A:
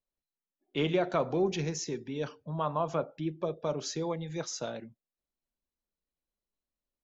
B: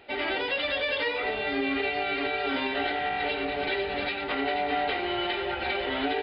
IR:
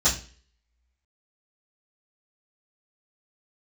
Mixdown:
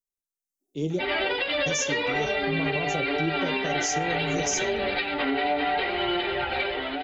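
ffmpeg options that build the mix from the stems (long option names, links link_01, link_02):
-filter_complex "[0:a]firequalizer=gain_entry='entry(370,0);entry(1400,-21);entry(6000,11)':delay=0.05:min_phase=1,dynaudnorm=framelen=500:gausssize=7:maxgain=7dB,volume=-5.5dB,asplit=3[link_01][link_02][link_03];[link_01]atrim=end=0.99,asetpts=PTS-STARTPTS,afade=type=out:start_time=0.986:duration=0.004:curve=hsin[link_04];[link_02]atrim=start=0.99:end=1.66,asetpts=PTS-STARTPTS,volume=0[link_05];[link_03]atrim=start=1.66,asetpts=PTS-STARTPTS,afade=type=in:duration=0.004:curve=hsin[link_06];[link_04][link_05][link_06]concat=n=3:v=0:a=1[link_07];[1:a]aphaser=in_gain=1:out_gain=1:delay=4.4:decay=0.26:speed=0.56:type=triangular,adelay=900,volume=-1dB[link_08];[link_07][link_08]amix=inputs=2:normalize=0,dynaudnorm=framelen=120:gausssize=9:maxgain=8.5dB,flanger=delay=4.7:depth=2.9:regen=51:speed=0.84:shape=triangular,alimiter=limit=-16.5dB:level=0:latency=1:release=90"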